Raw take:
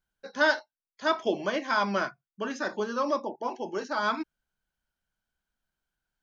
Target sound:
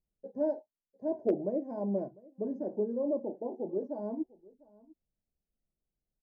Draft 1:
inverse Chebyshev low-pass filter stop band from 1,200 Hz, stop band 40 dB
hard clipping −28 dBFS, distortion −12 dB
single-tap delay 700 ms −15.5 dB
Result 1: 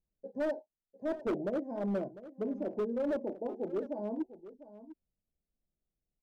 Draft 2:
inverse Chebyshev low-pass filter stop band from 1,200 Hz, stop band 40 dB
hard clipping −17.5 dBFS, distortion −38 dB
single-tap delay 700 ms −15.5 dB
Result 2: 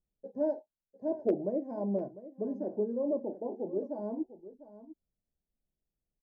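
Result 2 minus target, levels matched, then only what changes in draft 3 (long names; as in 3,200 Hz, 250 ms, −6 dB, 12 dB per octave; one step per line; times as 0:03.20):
echo-to-direct +8 dB
change: single-tap delay 700 ms −23.5 dB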